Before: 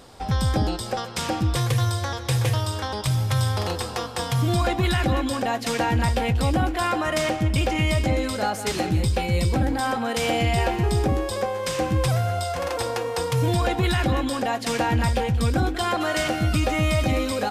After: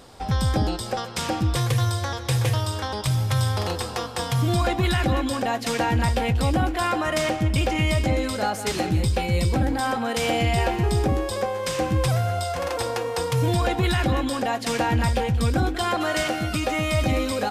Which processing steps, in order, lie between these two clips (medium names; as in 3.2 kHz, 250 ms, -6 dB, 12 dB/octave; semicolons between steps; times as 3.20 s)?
16.23–16.94 s: bass shelf 120 Hz -11.5 dB